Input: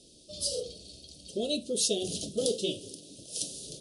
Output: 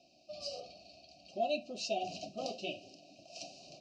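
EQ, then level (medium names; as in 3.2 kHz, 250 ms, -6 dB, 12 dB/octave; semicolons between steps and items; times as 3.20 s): vowel filter a; low-pass 5.8 kHz 12 dB/octave; static phaser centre 2.3 kHz, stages 8; +17.5 dB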